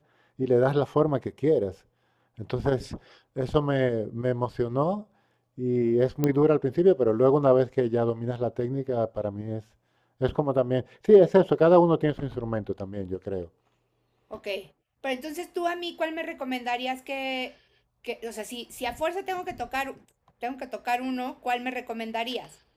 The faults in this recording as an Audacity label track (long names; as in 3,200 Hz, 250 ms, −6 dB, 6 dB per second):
6.240000	6.240000	click −11 dBFS